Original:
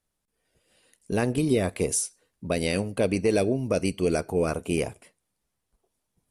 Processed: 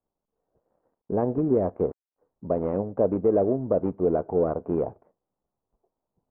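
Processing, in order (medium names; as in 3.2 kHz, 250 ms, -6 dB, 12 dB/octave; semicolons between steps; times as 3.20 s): dead-time distortion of 0.14 ms; inverse Chebyshev low-pass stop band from 5.3 kHz, stop band 80 dB; bass shelf 270 Hz -10 dB; trim +5 dB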